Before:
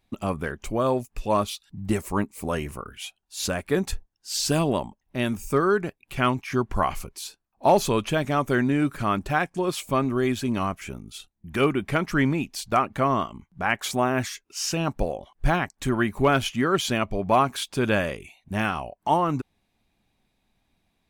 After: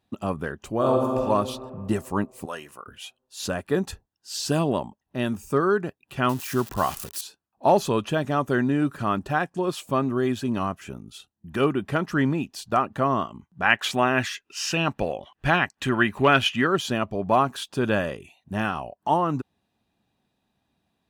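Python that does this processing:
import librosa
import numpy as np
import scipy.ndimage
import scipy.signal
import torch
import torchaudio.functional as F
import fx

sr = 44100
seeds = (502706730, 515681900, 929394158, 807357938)

y = fx.reverb_throw(x, sr, start_s=0.74, length_s=0.46, rt60_s=2.3, drr_db=-0.5)
y = fx.highpass(y, sr, hz=1200.0, slope=6, at=(2.45, 2.87))
y = fx.crossing_spikes(y, sr, level_db=-21.5, at=(6.29, 7.21))
y = fx.peak_eq(y, sr, hz=2400.0, db=12.0, octaves=1.4, at=(13.62, 16.67))
y = scipy.signal.sosfilt(scipy.signal.butter(2, 85.0, 'highpass', fs=sr, output='sos'), y)
y = fx.high_shelf(y, sr, hz=4100.0, db=-6.0)
y = fx.notch(y, sr, hz=2200.0, q=5.1)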